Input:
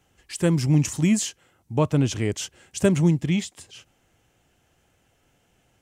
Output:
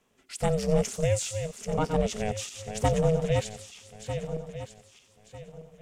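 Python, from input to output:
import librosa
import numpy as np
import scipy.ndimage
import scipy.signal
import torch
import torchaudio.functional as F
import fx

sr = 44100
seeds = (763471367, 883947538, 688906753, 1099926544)

y = fx.reverse_delay_fb(x, sr, ms=624, feedback_pct=51, wet_db=-7.5)
y = y * np.sin(2.0 * np.pi * 320.0 * np.arange(len(y)) / sr)
y = fx.echo_wet_highpass(y, sr, ms=89, feedback_pct=50, hz=3100.0, wet_db=-11.0)
y = y * librosa.db_to_amplitude(-2.5)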